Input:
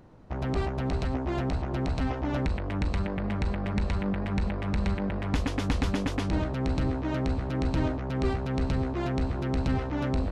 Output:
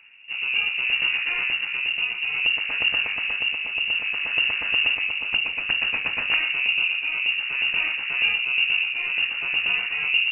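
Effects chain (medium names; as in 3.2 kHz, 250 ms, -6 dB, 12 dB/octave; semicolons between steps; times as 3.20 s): integer overflow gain 16 dB; rotary cabinet horn 0.6 Hz; harmony voices +5 st -7 dB; on a send at -15 dB: reverberation RT60 0.90 s, pre-delay 3 ms; on the sum: frequency inversion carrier 2.8 kHz; trim +3.5 dB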